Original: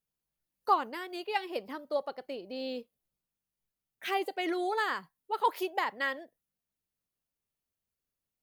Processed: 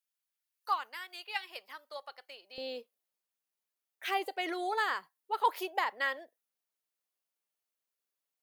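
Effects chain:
high-pass filter 1,300 Hz 12 dB per octave, from 0:02.58 460 Hz

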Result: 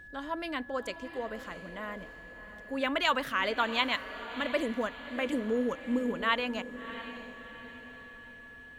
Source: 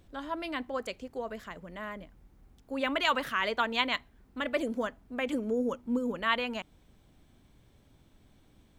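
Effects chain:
on a send: feedback delay with all-pass diffusion 670 ms, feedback 47%, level −12.5 dB
on the sum: steady tone 1,700 Hz −48 dBFS

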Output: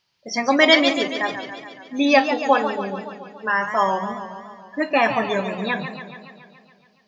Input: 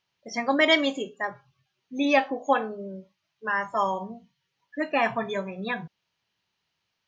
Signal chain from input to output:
parametric band 4,800 Hz +9 dB 0.35 octaves
feedback echo with a swinging delay time 141 ms, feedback 65%, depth 132 cents, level −9.5 dB
level +5.5 dB

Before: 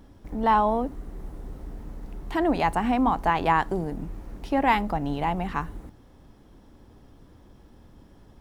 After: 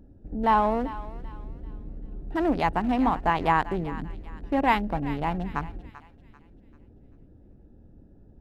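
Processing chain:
adaptive Wiener filter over 41 samples
feedback echo with a high-pass in the loop 390 ms, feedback 42%, high-pass 1,100 Hz, level −13 dB

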